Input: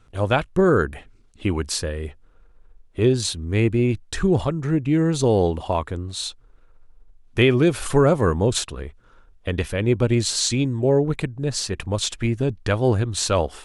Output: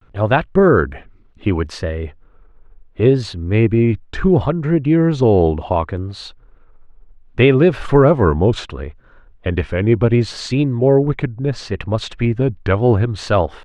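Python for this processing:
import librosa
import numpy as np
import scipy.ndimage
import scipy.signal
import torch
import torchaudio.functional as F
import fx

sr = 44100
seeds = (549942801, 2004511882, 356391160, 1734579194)

y = scipy.signal.sosfilt(scipy.signal.butter(2, 2500.0, 'lowpass', fs=sr, output='sos'), x)
y = fx.vibrato(y, sr, rate_hz=0.69, depth_cents=97.0)
y = y * librosa.db_to_amplitude(5.5)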